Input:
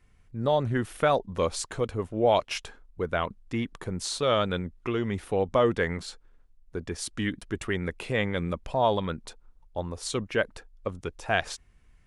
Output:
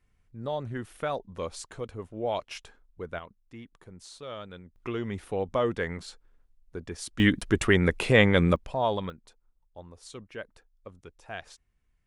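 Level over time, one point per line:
−8 dB
from 0:03.19 −15.5 dB
from 0:04.76 −4 dB
from 0:07.20 +8 dB
from 0:08.56 −3 dB
from 0:09.10 −13.5 dB

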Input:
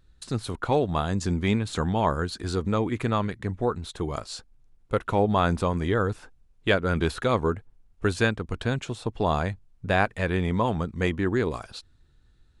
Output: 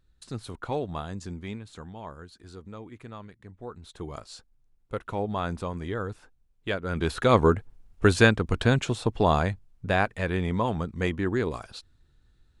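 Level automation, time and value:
0:00.87 −7 dB
0:01.93 −17 dB
0:03.52 −17 dB
0:04.01 −7.5 dB
0:06.81 −7.5 dB
0:07.36 +5 dB
0:08.85 +5 dB
0:10.07 −2 dB

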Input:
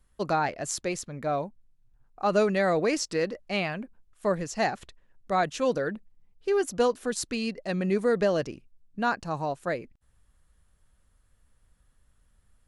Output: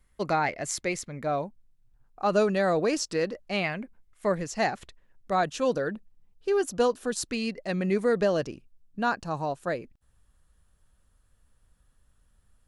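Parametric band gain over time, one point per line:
parametric band 2,100 Hz 0.21 octaves
+10.5 dB
from 0:01.21 0 dB
from 0:02.33 −8.5 dB
from 0:03.06 −2 dB
from 0:03.64 +9 dB
from 0:04.34 +2 dB
from 0:05.33 −6 dB
from 0:07.28 +3.5 dB
from 0:08.13 −5 dB

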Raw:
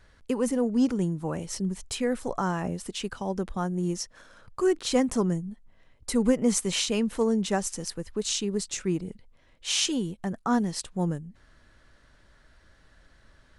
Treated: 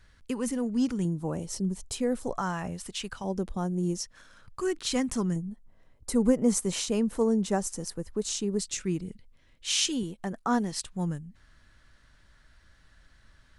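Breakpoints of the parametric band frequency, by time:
parametric band −8 dB 1.9 octaves
560 Hz
from 0:01.05 2,000 Hz
from 0:02.33 340 Hz
from 0:03.24 1,700 Hz
from 0:04.03 540 Hz
from 0:05.36 2,800 Hz
from 0:08.59 720 Hz
from 0:10.03 92 Hz
from 0:10.72 470 Hz

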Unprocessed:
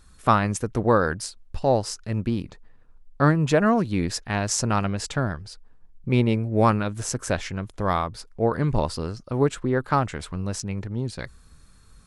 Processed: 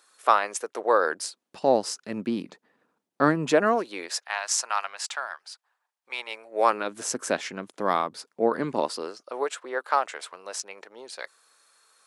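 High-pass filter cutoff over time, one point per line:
high-pass filter 24 dB per octave
0:00.89 450 Hz
0:01.58 210 Hz
0:03.47 210 Hz
0:04.38 800 Hz
0:06.26 800 Hz
0:07.04 230 Hz
0:08.69 230 Hz
0:09.46 510 Hz

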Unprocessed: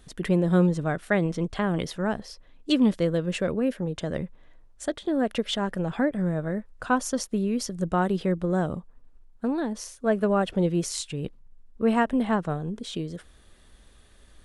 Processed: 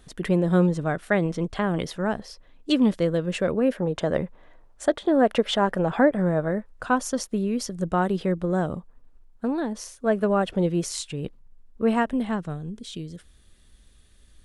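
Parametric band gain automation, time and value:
parametric band 800 Hz 2.7 octaves
0:03.33 +2 dB
0:03.88 +9 dB
0:06.33 +9 dB
0:06.89 +1.5 dB
0:11.88 +1.5 dB
0:12.60 −9.5 dB

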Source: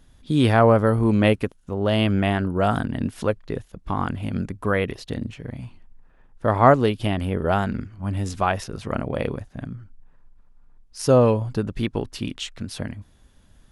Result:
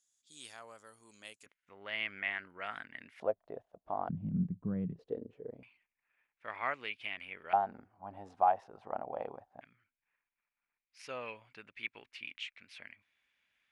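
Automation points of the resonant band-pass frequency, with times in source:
resonant band-pass, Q 5.7
7,100 Hz
from 0:01.46 2,100 Hz
from 0:03.20 670 Hz
from 0:04.09 170 Hz
from 0:04.99 450 Hz
from 0:05.63 2,300 Hz
from 0:07.53 780 Hz
from 0:09.61 2,300 Hz

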